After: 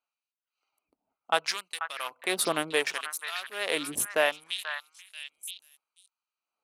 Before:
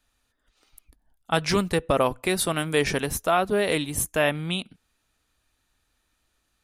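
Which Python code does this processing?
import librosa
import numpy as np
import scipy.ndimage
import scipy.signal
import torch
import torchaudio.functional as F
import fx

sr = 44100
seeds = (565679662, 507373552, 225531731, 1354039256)

y = fx.wiener(x, sr, points=25)
y = fx.filter_lfo_highpass(y, sr, shape='sine', hz=0.69, low_hz=330.0, high_hz=3200.0, q=0.77)
y = fx.echo_stepped(y, sr, ms=486, hz=1400.0, octaves=1.4, feedback_pct=70, wet_db=-5)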